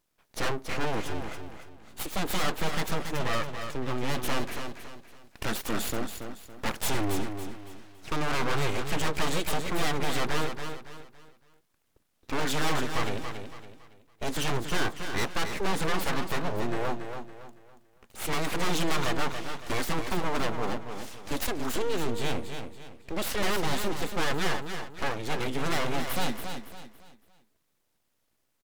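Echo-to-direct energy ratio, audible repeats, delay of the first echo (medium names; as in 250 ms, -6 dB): -7.0 dB, 4, 280 ms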